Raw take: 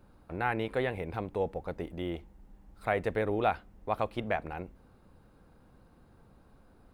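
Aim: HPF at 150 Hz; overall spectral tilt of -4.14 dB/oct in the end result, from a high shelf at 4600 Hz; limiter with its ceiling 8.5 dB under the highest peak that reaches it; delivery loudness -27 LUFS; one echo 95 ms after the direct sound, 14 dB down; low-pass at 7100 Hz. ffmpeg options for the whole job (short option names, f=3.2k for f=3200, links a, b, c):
-af "highpass=150,lowpass=7.1k,highshelf=f=4.6k:g=6.5,alimiter=limit=-21dB:level=0:latency=1,aecho=1:1:95:0.2,volume=9.5dB"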